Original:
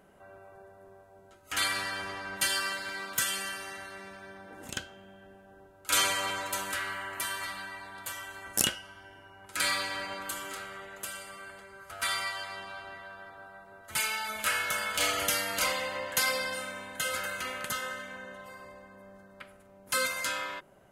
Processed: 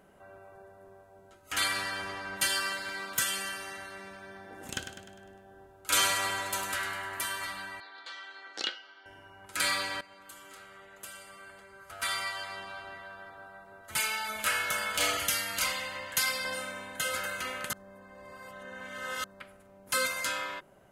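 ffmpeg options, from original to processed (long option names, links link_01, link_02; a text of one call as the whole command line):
ffmpeg -i in.wav -filter_complex "[0:a]asettb=1/sr,asplit=3[link_01][link_02][link_03];[link_01]atrim=end=4.214[link_04];[link_02]atrim=start=4.21:end=7.21,asetpts=PTS-STARTPTS,afade=type=in:duration=0.004:curve=qsin,afade=type=out:start_time=2.996:duration=0.004:curve=qsin,aecho=1:1:101|202|303|404|505|606:0.355|0.181|0.0923|0.0471|0.024|0.0122,atrim=end_sample=132300[link_05];[link_03]atrim=start=7.206[link_06];[link_04][link_05]acrossfade=duration=0.004:curve1=hsin:curve2=qsin[link_07];[link_07][link_06]acrossfade=duration=0.004:curve1=qsin:curve2=hsin,asettb=1/sr,asplit=3[link_08][link_09][link_10];[link_08]atrim=end=7.804[link_11];[link_09]atrim=start=7.8:end=9.06,asetpts=PTS-STARTPTS,afade=type=in:duration=0.004:curve=qsin,afade=type=out:start_time=1.256:duration=0.004:curve=qsin,highpass=frequency=370:width=0.5412,highpass=frequency=370:width=1.3066,equalizer=frequency=400:width_type=q:width=4:gain=-4,equalizer=frequency=610:width_type=q:width=4:gain=-10,equalizer=frequency=1000:width_type=q:width=4:gain=-8,equalizer=frequency=1700:width_type=q:width=4:gain=-3,equalizer=frequency=2700:width_type=q:width=4:gain=-6,equalizer=frequency=4200:width_type=q:width=4:gain=8,lowpass=frequency=4400:width=0.5412,lowpass=frequency=4400:width=1.3066[link_12];[link_10]atrim=start=9.056[link_13];[link_11][link_12]acrossfade=duration=0.004:curve1=hsin:curve2=qsin[link_14];[link_14][link_13]acrossfade=duration=0.004:curve1=qsin:curve2=hsin,asettb=1/sr,asplit=3[link_15][link_16][link_17];[link_15]atrim=end=15.174[link_18];[link_16]atrim=start=15.17:end=16.45,asetpts=PTS-STARTPTS,afade=type=in:duration=0.004:curve=qsin,afade=type=out:start_time=1.276:duration=0.004:curve=qsin,equalizer=frequency=470:width=0.62:gain=-8[link_19];[link_17]atrim=start=16.446[link_20];[link_18][link_19]acrossfade=duration=0.004:curve1=hsin:curve2=qsin[link_21];[link_21][link_20]acrossfade=duration=0.004:curve1=qsin:curve2=hsin,asplit=4[link_22][link_23][link_24][link_25];[link_22]atrim=end=10.01,asetpts=PTS-STARTPTS,afade=type=out:start_time=10.006:duration=0.004:curve=hsin:silence=0.125893[link_26];[link_23]atrim=start=10.01:end=17.732,asetpts=PTS-STARTPTS,afade=type=in:duration=2.48:silence=0.125893[link_27];[link_24]atrim=start=17.728:end=19.242,asetpts=PTS-STARTPTS,areverse[link_28];[link_25]atrim=start=19.238[link_29];[link_26][link_27]concat=n=2:v=0:a=1[link_30];[link_30][link_28]acrossfade=duration=0.004:curve1=hsin:curve2=hsin[link_31];[link_31][link_29]acrossfade=duration=0.004:curve1=hsin:curve2=hsin" out.wav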